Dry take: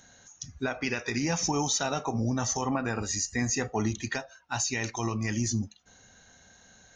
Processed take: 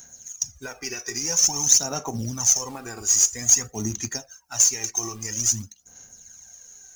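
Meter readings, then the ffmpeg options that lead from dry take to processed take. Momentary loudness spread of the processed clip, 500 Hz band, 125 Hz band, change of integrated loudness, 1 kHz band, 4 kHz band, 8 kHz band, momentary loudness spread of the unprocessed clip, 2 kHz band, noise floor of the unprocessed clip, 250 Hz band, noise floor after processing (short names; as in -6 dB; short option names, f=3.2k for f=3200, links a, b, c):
14 LU, -3.5 dB, -3.0 dB, +8.5 dB, -4.0 dB, +7.5 dB, +14.0 dB, 7 LU, -4.5 dB, -58 dBFS, -5.0 dB, -54 dBFS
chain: -af "aexciter=amount=14.4:drive=3.9:freq=5.5k,acrusher=bits=4:mode=log:mix=0:aa=0.000001,aphaser=in_gain=1:out_gain=1:delay=2.7:decay=0.57:speed=0.5:type=sinusoidal,volume=-6.5dB"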